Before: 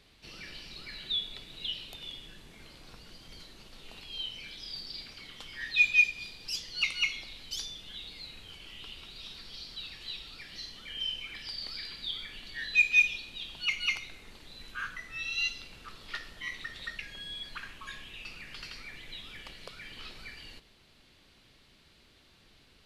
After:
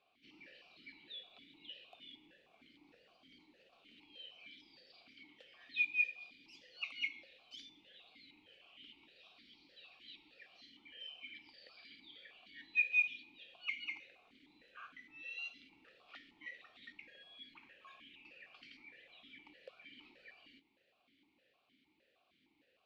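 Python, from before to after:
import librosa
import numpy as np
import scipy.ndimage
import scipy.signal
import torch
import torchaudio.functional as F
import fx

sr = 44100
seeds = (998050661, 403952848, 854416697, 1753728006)

y = fx.vowel_held(x, sr, hz=6.5)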